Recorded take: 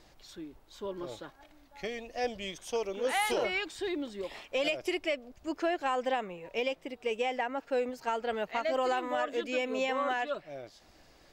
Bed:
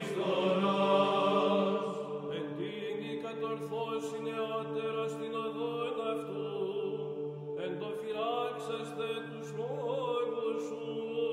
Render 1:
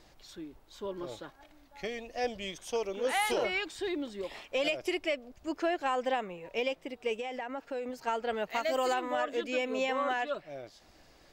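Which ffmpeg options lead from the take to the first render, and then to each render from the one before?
-filter_complex "[0:a]asettb=1/sr,asplit=3[a][b][c];[a]atrim=end=7.144[d];[b]atrim=start=7.14:end=7.9,asetpts=PTS-STARTPTS,afade=t=in:d=0.004:c=qsin,afade=t=out:st=0.756:d=0.004:c=qsin,acompressor=threshold=-33dB:ratio=6:attack=3.2:release=140:knee=1:detection=peak[e];[c]atrim=start=7.896[f];[d][e]acrossfade=d=0.004:c1=hsin:c2=qsin[g];[g][f]acrossfade=d=0.004:c1=qsin:c2=hsin,asettb=1/sr,asplit=3[h][i][j];[h]atrim=end=8.504[k];[i]atrim=start=8.5:end=8.94,asetpts=PTS-STARTPTS,afade=t=in:d=0.004:c=qsin,afade=t=out:st=0.436:d=0.004:c=qsin,aemphasis=mode=production:type=50fm[l];[j]atrim=start=8.936[m];[k][l]acrossfade=d=0.004:c1=hsin:c2=qsin[n];[n][m]acrossfade=d=0.004:c1=qsin:c2=hsin"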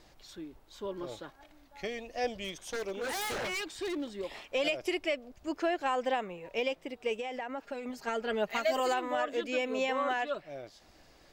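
-filter_complex "[0:a]asettb=1/sr,asplit=3[a][b][c];[a]atrim=end=2.444[d];[b]atrim=start=2.44:end=4.19,asetpts=PTS-STARTPTS,afade=t=in:d=0.004:c=qsin,afade=t=out:st=1.746:d=0.004:c=qsin,aeval=exprs='0.0316*(abs(mod(val(0)/0.0316+3,4)-2)-1)':c=same[e];[c]atrim=start=4.186[f];[d][e]acrossfade=d=0.004:c1=hsin:c2=qsin[g];[g][f]acrossfade=d=0.004:c1=qsin:c2=hsin,asettb=1/sr,asplit=3[h][i][j];[h]atrim=end=7.634[k];[i]atrim=start=7.63:end=8.8,asetpts=PTS-STARTPTS,afade=t=in:d=0.004:c=qsin,afade=t=out:st=1.166:d=0.004:c=qsin,aecho=1:1:4.9:0.65,atrim=end_sample=51597[l];[j]atrim=start=8.796[m];[k][l]acrossfade=d=0.004:c1=hsin:c2=qsin[n];[n][m]acrossfade=d=0.004:c1=qsin:c2=hsin"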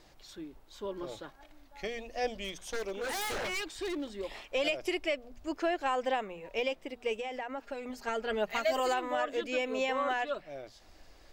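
-af "bandreject=f=60:t=h:w=6,bandreject=f=120:t=h:w=6,bandreject=f=180:t=h:w=6,bandreject=f=240:t=h:w=6,asubboost=boost=3:cutoff=64"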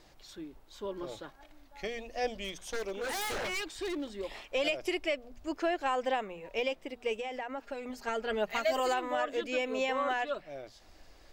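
-af anull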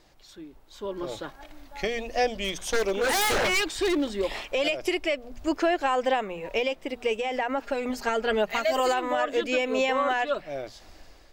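-af "alimiter=level_in=2.5dB:limit=-24dB:level=0:latency=1:release=373,volume=-2.5dB,dynaudnorm=f=430:g=5:m=11dB"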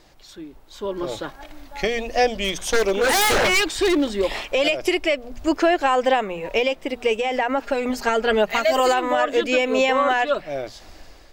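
-af "volume=6dB"

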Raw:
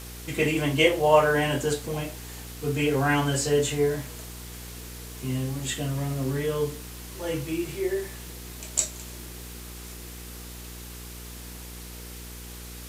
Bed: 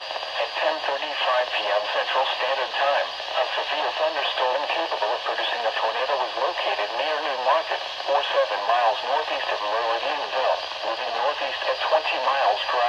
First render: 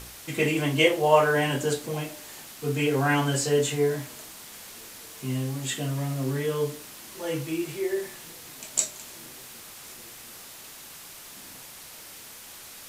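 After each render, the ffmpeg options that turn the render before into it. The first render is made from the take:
-af "bandreject=f=60:t=h:w=4,bandreject=f=120:t=h:w=4,bandreject=f=180:t=h:w=4,bandreject=f=240:t=h:w=4,bandreject=f=300:t=h:w=4,bandreject=f=360:t=h:w=4,bandreject=f=420:t=h:w=4,bandreject=f=480:t=h:w=4,bandreject=f=540:t=h:w=4,bandreject=f=600:t=h:w=4"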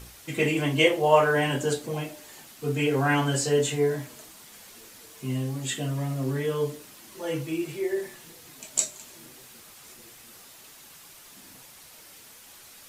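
-af "afftdn=nr=6:nf=-45"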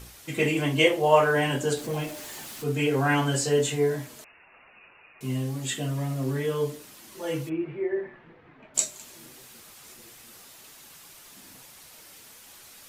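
-filter_complex "[0:a]asettb=1/sr,asplit=3[a][b][c];[a]atrim=end=1.774[d];[b]atrim=start=1.77:end=2.64,asetpts=PTS-STARTPTS,afade=t=in:d=0.004:c=qsin,afade=t=out:st=0.866:d=0.004:c=qsin,aeval=exprs='val(0)+0.5*0.0119*sgn(val(0))':c=same[e];[c]atrim=start=2.636[f];[d][e]acrossfade=d=0.004:c1=hsin:c2=qsin[g];[g][f]acrossfade=d=0.004:c1=qsin:c2=hsin,asettb=1/sr,asplit=3[h][i][j];[h]atrim=end=4.244[k];[i]atrim=start=4.24:end=5.21,asetpts=PTS-STARTPTS,afade=t=in:d=0.004:c=qsin,afade=t=out:st=0.966:d=0.004:c=qsin,lowpass=f=2.5k:t=q:w=0.5098,lowpass=f=2.5k:t=q:w=0.6013,lowpass=f=2.5k:t=q:w=0.9,lowpass=f=2.5k:t=q:w=2.563,afreqshift=-2900[l];[j]atrim=start=5.206[m];[k][l]acrossfade=d=0.004:c1=hsin:c2=qsin[n];[n][m]acrossfade=d=0.004:c1=qsin:c2=hsin,asplit=3[o][p][q];[o]afade=t=out:st=7.48:d=0.02[r];[p]lowpass=f=2.1k:w=0.5412,lowpass=f=2.1k:w=1.3066,afade=t=in:st=7.48:d=0.02,afade=t=out:st=8.74:d=0.02[s];[q]afade=t=in:st=8.74:d=0.02[t];[r][s][t]amix=inputs=3:normalize=0"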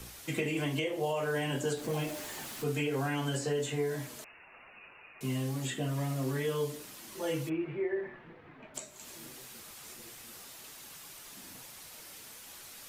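-filter_complex "[0:a]alimiter=limit=-16dB:level=0:latency=1:release=291,acrossover=split=100|640|2500[a][b][c][d];[a]acompressor=threshold=-53dB:ratio=4[e];[b]acompressor=threshold=-32dB:ratio=4[f];[c]acompressor=threshold=-41dB:ratio=4[g];[d]acompressor=threshold=-42dB:ratio=4[h];[e][f][g][h]amix=inputs=4:normalize=0"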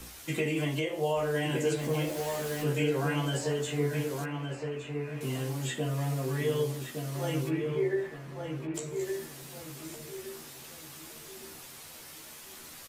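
-filter_complex "[0:a]asplit=2[a][b];[b]adelay=13,volume=-4.5dB[c];[a][c]amix=inputs=2:normalize=0,asplit=2[d][e];[e]adelay=1165,lowpass=f=2.1k:p=1,volume=-4.5dB,asplit=2[f][g];[g]adelay=1165,lowpass=f=2.1k:p=1,volume=0.36,asplit=2[h][i];[i]adelay=1165,lowpass=f=2.1k:p=1,volume=0.36,asplit=2[j][k];[k]adelay=1165,lowpass=f=2.1k:p=1,volume=0.36,asplit=2[l][m];[m]adelay=1165,lowpass=f=2.1k:p=1,volume=0.36[n];[d][f][h][j][l][n]amix=inputs=6:normalize=0"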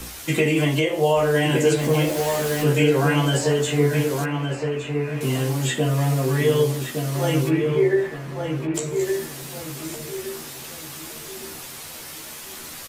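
-af "volume=10.5dB"

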